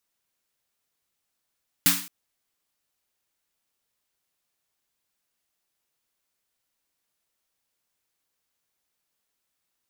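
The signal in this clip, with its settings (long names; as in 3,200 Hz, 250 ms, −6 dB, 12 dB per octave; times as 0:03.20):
synth snare length 0.22 s, tones 180 Hz, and 280 Hz, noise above 1,000 Hz, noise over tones 10 dB, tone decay 0.39 s, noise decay 0.44 s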